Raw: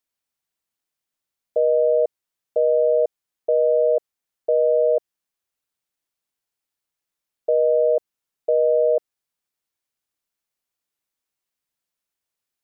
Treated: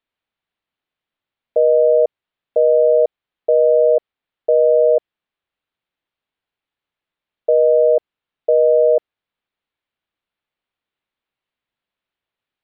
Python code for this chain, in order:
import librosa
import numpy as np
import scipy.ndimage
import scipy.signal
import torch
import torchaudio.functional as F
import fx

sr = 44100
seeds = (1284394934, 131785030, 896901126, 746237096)

y = scipy.signal.sosfilt(scipy.signal.butter(6, 3800.0, 'lowpass', fs=sr, output='sos'), x)
y = F.gain(torch.from_numpy(y), 5.0).numpy()